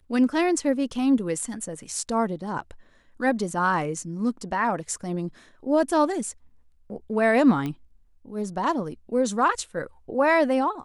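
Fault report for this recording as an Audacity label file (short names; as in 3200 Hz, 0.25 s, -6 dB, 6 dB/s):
7.660000	7.660000	pop -18 dBFS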